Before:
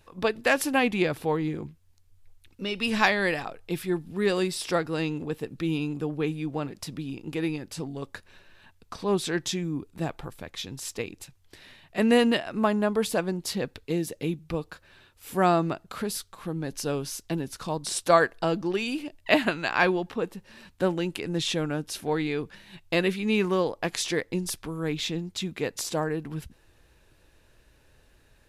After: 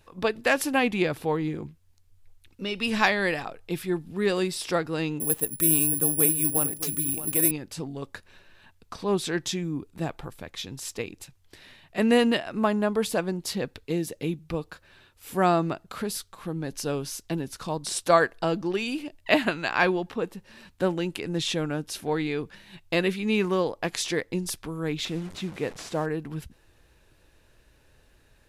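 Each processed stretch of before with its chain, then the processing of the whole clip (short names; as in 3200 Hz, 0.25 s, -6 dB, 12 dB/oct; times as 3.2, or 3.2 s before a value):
5.2–7.51 careless resampling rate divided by 4×, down none, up zero stuff + echo 0.62 s -12.5 dB
25.05–26.06 delta modulation 64 kbps, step -36.5 dBFS + high shelf 3600 Hz -9 dB
whole clip: dry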